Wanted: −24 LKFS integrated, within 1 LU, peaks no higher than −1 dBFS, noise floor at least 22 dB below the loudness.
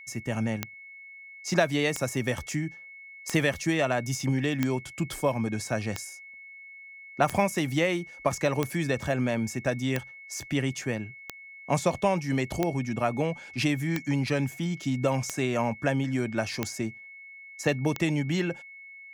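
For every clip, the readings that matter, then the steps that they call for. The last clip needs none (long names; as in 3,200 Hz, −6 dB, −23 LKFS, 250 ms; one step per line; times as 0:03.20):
number of clicks 14; interfering tone 2,200 Hz; level of the tone −44 dBFS; integrated loudness −28.5 LKFS; sample peak −9.5 dBFS; target loudness −24.0 LKFS
→ click removal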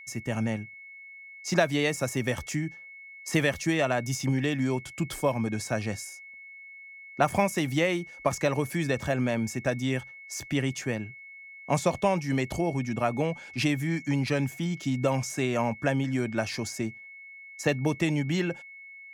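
number of clicks 0; interfering tone 2,200 Hz; level of the tone −44 dBFS
→ notch filter 2,200 Hz, Q 30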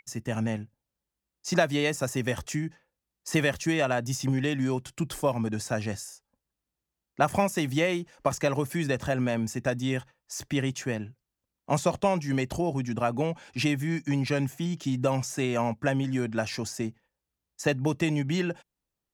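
interfering tone none found; integrated loudness −29.0 LKFS; sample peak −9.5 dBFS; target loudness −24.0 LKFS
→ level +5 dB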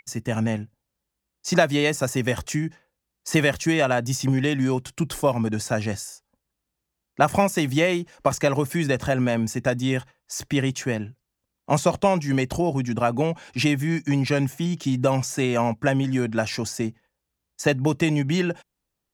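integrated loudness −24.0 LKFS; sample peak −4.5 dBFS; background noise floor −82 dBFS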